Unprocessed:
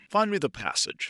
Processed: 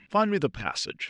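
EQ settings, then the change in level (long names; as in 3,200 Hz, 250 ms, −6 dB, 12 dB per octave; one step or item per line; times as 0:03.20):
high-frequency loss of the air 110 metres
low-shelf EQ 160 Hz +8 dB
0.0 dB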